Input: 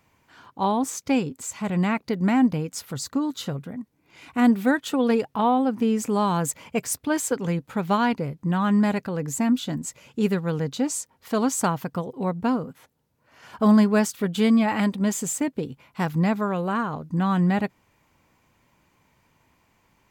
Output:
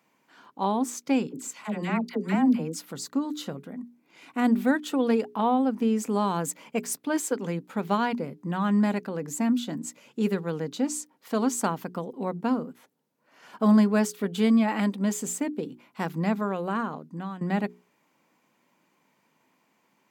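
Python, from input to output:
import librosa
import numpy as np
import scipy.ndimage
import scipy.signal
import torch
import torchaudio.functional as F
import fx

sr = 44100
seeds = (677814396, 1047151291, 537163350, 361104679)

y = fx.dispersion(x, sr, late='lows', ms=68.0, hz=870.0, at=(1.27, 2.79))
y = fx.edit(y, sr, fx.fade_out_to(start_s=16.86, length_s=0.55, floor_db=-15.5), tone=tone)
y = scipy.signal.sosfilt(scipy.signal.butter(4, 200.0, 'highpass', fs=sr, output='sos'), y)
y = fx.low_shelf(y, sr, hz=260.0, db=6.5)
y = fx.hum_notches(y, sr, base_hz=60, count=7)
y = F.gain(torch.from_numpy(y), -4.0).numpy()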